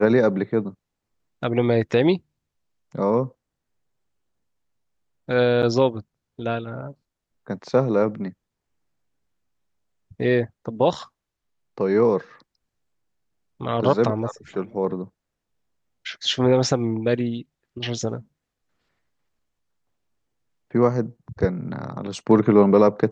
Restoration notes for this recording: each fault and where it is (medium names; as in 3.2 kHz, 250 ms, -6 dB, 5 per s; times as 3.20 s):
5.62–5.63 s: dropout 8.2 ms